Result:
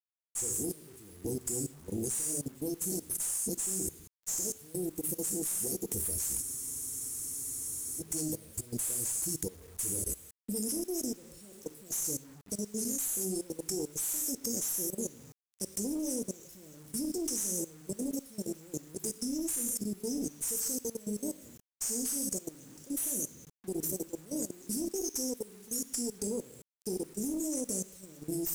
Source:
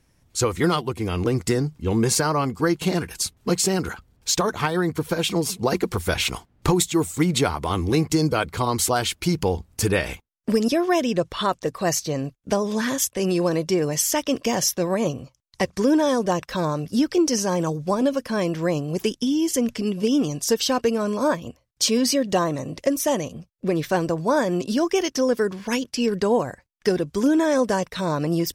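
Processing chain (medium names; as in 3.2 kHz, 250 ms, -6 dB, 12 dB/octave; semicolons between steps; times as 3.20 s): rotary cabinet horn 6.7 Hz; in parallel at +3 dB: peak limiter -18 dBFS, peak gain reduction 9.5 dB; on the sum: inverse Chebyshev band-stop 1.1–3 kHz, stop band 60 dB; pre-emphasis filter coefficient 0.9; gated-style reverb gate 250 ms falling, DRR 3 dB; valve stage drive 22 dB, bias 0.45; dynamic bell 9.7 kHz, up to +5 dB, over -41 dBFS, Q 1; level held to a coarse grid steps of 19 dB; bit crusher 10-bit; spectral freeze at 6.43 s, 1.58 s; trim +4.5 dB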